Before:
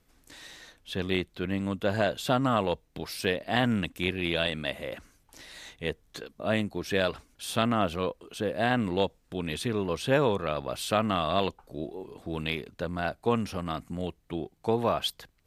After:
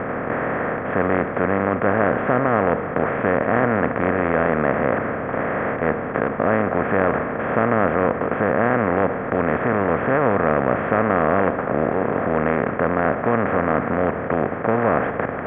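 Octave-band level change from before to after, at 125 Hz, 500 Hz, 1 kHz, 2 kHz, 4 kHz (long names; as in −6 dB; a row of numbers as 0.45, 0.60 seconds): +7.5 dB, +11.0 dB, +11.5 dB, +11.0 dB, below −15 dB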